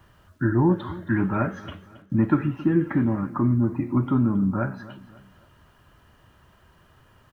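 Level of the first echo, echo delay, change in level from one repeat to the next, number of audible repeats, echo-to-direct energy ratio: −18.0 dB, 272 ms, −7.5 dB, 3, −17.0 dB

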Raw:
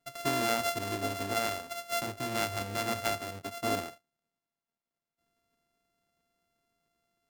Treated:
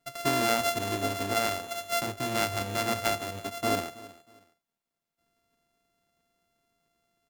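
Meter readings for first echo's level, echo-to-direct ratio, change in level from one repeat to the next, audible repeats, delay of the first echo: −19.0 dB, −18.5 dB, −11.5 dB, 2, 319 ms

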